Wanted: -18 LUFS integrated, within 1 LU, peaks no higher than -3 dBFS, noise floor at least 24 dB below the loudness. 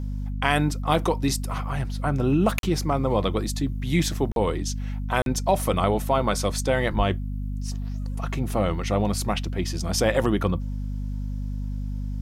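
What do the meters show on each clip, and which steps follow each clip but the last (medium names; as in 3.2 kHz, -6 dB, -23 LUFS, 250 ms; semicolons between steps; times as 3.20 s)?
dropouts 3; longest dropout 42 ms; hum 50 Hz; highest harmonic 250 Hz; hum level -27 dBFS; loudness -25.5 LUFS; peak level -5.5 dBFS; loudness target -18.0 LUFS
-> interpolate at 2.59/4.32/5.22 s, 42 ms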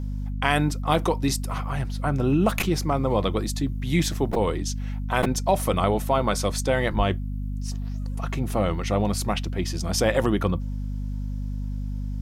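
dropouts 0; hum 50 Hz; highest harmonic 250 Hz; hum level -27 dBFS
-> de-hum 50 Hz, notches 5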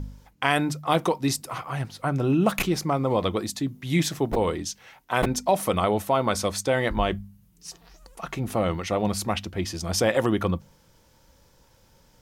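hum not found; loudness -25.5 LUFS; peak level -6.5 dBFS; loudness target -18.0 LUFS
-> trim +7.5 dB; peak limiter -3 dBFS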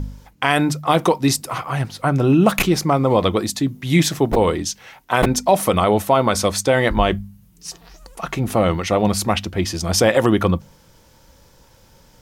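loudness -18.5 LUFS; peak level -3.0 dBFS; noise floor -52 dBFS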